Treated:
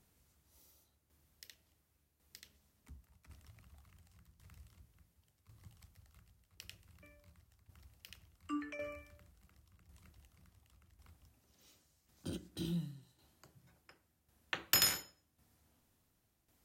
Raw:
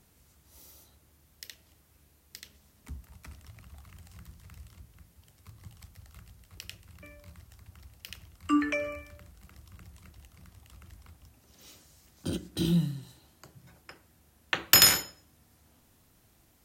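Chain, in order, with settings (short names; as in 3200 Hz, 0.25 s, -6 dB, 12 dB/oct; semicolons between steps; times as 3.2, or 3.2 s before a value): tremolo saw down 0.91 Hz, depth 65%; gain -8.5 dB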